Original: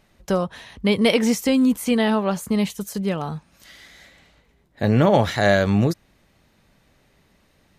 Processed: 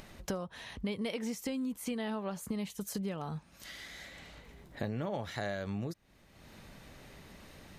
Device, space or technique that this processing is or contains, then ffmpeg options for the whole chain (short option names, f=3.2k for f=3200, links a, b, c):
upward and downward compression: -af "acompressor=mode=upward:threshold=-39dB:ratio=2.5,acompressor=threshold=-31dB:ratio=8,volume=-3dB"